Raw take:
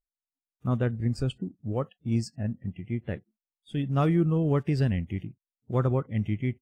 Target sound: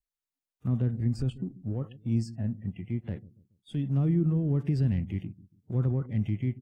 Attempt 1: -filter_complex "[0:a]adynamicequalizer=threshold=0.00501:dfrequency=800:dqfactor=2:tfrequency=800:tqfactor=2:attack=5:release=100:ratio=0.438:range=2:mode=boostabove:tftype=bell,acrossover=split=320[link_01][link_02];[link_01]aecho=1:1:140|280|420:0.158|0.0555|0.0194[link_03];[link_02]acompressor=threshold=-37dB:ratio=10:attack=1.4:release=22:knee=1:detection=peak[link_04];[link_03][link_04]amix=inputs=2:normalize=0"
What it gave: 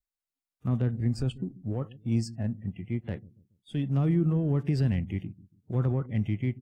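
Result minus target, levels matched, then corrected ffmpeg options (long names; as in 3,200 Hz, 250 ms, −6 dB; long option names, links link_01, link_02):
downward compressor: peak gain reduction −7 dB
-filter_complex "[0:a]adynamicequalizer=threshold=0.00501:dfrequency=800:dqfactor=2:tfrequency=800:tqfactor=2:attack=5:release=100:ratio=0.438:range=2:mode=boostabove:tftype=bell,acrossover=split=320[link_01][link_02];[link_01]aecho=1:1:140|280|420:0.158|0.0555|0.0194[link_03];[link_02]acompressor=threshold=-45dB:ratio=10:attack=1.4:release=22:knee=1:detection=peak[link_04];[link_03][link_04]amix=inputs=2:normalize=0"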